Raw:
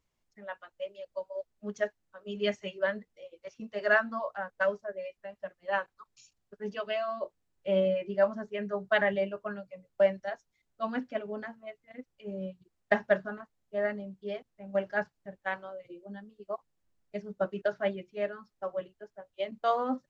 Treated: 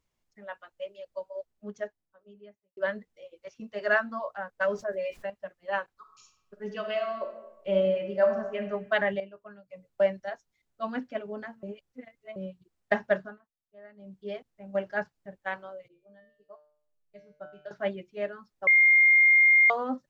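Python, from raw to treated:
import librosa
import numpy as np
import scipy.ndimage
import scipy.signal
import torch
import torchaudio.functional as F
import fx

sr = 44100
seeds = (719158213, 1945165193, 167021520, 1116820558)

y = fx.studio_fade_out(x, sr, start_s=1.18, length_s=1.59)
y = fx.env_flatten(y, sr, amount_pct=50, at=(4.63, 5.3))
y = fx.reverb_throw(y, sr, start_s=5.94, length_s=2.69, rt60_s=1.0, drr_db=5.5)
y = fx.comb_fb(y, sr, f0_hz=150.0, decay_s=0.59, harmonics='all', damping=0.0, mix_pct=90, at=(15.88, 17.71))
y = fx.edit(y, sr, fx.clip_gain(start_s=9.2, length_s=0.5, db=-11.0),
    fx.reverse_span(start_s=11.63, length_s=0.73),
    fx.fade_down_up(start_s=13.2, length_s=0.95, db=-20.0, fade_s=0.19),
    fx.bleep(start_s=18.67, length_s=1.03, hz=2120.0, db=-15.5), tone=tone)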